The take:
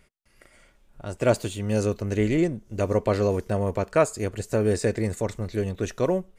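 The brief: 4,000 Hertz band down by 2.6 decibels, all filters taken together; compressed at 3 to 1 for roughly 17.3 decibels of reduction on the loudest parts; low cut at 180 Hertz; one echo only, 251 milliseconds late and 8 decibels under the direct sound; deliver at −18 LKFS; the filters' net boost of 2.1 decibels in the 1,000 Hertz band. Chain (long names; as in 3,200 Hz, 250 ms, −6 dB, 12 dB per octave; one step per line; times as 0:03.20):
high-pass filter 180 Hz
parametric band 1,000 Hz +3 dB
parametric band 4,000 Hz −3.5 dB
downward compressor 3 to 1, threshold −38 dBFS
single-tap delay 251 ms −8 dB
level +20.5 dB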